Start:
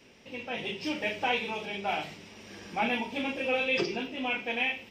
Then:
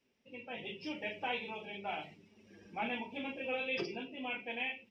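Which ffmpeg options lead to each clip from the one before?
ffmpeg -i in.wav -af "afftdn=noise_reduction=14:noise_floor=-43,volume=-8.5dB" out.wav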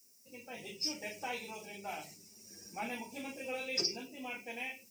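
ffmpeg -i in.wav -af "aexciter=amount=15.5:drive=9.5:freq=5200,volume=-2.5dB" out.wav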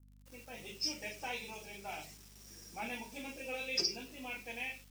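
ffmpeg -i in.wav -af "acrusher=bits=8:mix=0:aa=0.000001,aeval=exprs='val(0)+0.00141*(sin(2*PI*50*n/s)+sin(2*PI*2*50*n/s)/2+sin(2*PI*3*50*n/s)/3+sin(2*PI*4*50*n/s)/4+sin(2*PI*5*50*n/s)/5)':channel_layout=same,adynamicequalizer=threshold=0.00355:dfrequency=3300:dqfactor=0.82:tfrequency=3300:tqfactor=0.82:attack=5:release=100:ratio=0.375:range=2:mode=boostabove:tftype=bell,volume=-2.5dB" out.wav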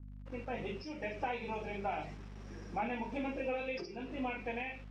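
ffmpeg -i in.wav -af "acompressor=threshold=-44dB:ratio=4,lowpass=1600,volume=12dB" out.wav

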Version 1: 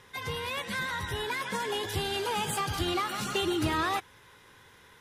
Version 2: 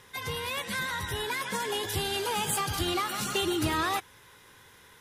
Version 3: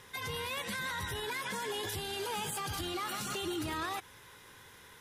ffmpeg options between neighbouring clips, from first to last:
ffmpeg -i in.wav -af "highshelf=frequency=6500:gain=8" out.wav
ffmpeg -i in.wav -af "alimiter=level_in=4.5dB:limit=-24dB:level=0:latency=1:release=61,volume=-4.5dB" out.wav

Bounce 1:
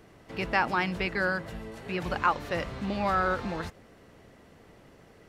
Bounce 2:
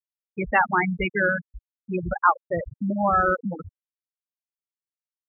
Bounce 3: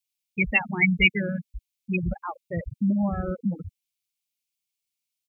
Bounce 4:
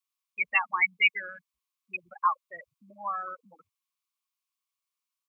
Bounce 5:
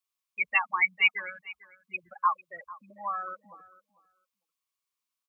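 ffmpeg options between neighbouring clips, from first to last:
ffmpeg -i in.wav -af "afftfilt=real='re*gte(hypot(re,im),0.126)':imag='im*gte(hypot(re,im),0.126)':win_size=1024:overlap=0.75,volume=7dB" out.wav
ffmpeg -i in.wav -af "firequalizer=gain_entry='entry(210,0);entry(310,-8);entry(1500,-26);entry(2200,8)':delay=0.05:min_phase=1,volume=3.5dB" out.wav
ffmpeg -i in.wav -af "highpass=frequency=1100:width_type=q:width=13,volume=-5dB" out.wav
ffmpeg -i in.wav -af "aecho=1:1:448|896:0.106|0.0159" out.wav

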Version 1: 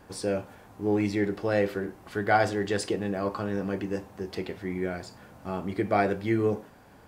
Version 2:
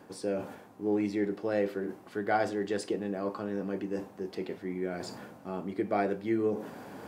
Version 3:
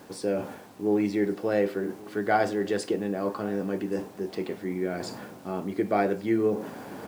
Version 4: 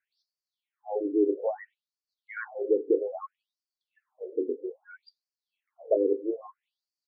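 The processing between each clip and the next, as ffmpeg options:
ffmpeg -i in.wav -af "highpass=250,lowshelf=frequency=410:gain=11,areverse,acompressor=mode=upward:threshold=-23dB:ratio=2.5,areverse,volume=-8dB" out.wav
ffmpeg -i in.wav -af "acrusher=bits=9:mix=0:aa=0.000001,aecho=1:1:1127:0.0794,volume=4.5dB" out.wav
ffmpeg -i in.wav -af "equalizer=frequency=125:width_type=o:width=1:gain=4,equalizer=frequency=250:width_type=o:width=1:gain=4,equalizer=frequency=500:width_type=o:width=1:gain=11,equalizer=frequency=1000:width_type=o:width=1:gain=5,equalizer=frequency=2000:width_type=o:width=1:gain=4,equalizer=frequency=4000:width_type=o:width=1:gain=6,equalizer=frequency=8000:width_type=o:width=1:gain=-10,afftdn=noise_reduction=27:noise_floor=-25,afftfilt=real='re*between(b*sr/1024,340*pow(6100/340,0.5+0.5*sin(2*PI*0.61*pts/sr))/1.41,340*pow(6100/340,0.5+0.5*sin(2*PI*0.61*pts/sr))*1.41)':imag='im*between(b*sr/1024,340*pow(6100/340,0.5+0.5*sin(2*PI*0.61*pts/sr))/1.41,340*pow(6100/340,0.5+0.5*sin(2*PI*0.61*pts/sr))*1.41)':win_size=1024:overlap=0.75,volume=-6dB" out.wav

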